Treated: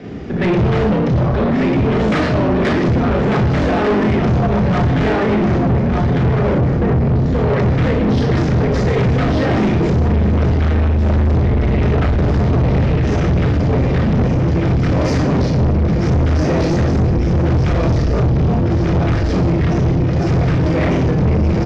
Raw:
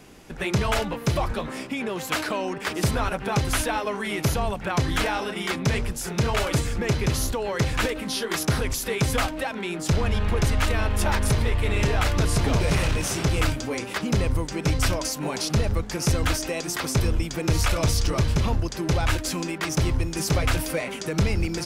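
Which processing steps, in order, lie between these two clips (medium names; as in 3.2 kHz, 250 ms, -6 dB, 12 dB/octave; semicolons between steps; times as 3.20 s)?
5.12–7.26 s: median filter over 15 samples; Bessel low-pass 4 kHz, order 8; bass shelf 470 Hz +11 dB; feedback delay 1195 ms, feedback 41%, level -5.5 dB; in parallel at -2 dB: compressor with a negative ratio -23 dBFS, ratio -1; on the sum: reverberation RT60 0.85 s, pre-delay 31 ms, DRR -1 dB; saturation -4.5 dBFS, distortion -8 dB; trim -7 dB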